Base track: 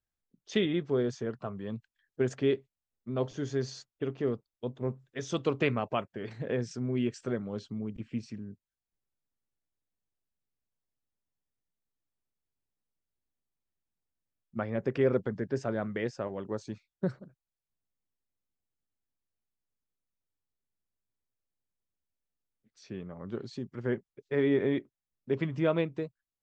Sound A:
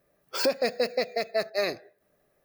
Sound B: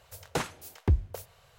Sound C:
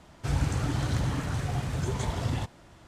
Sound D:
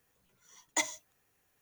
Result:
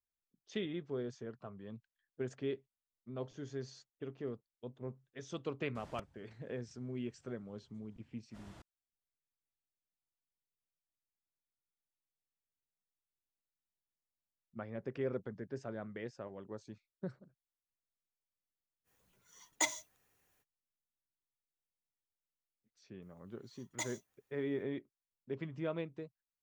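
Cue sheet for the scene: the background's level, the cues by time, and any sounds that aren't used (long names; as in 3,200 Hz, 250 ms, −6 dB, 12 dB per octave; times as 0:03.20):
base track −11 dB
0:05.75: mix in C −2.5 dB + gate with flip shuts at −32 dBFS, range −41 dB
0:18.84: mix in D −2 dB, fades 0.05 s
0:23.02: mix in D −10 dB
not used: A, B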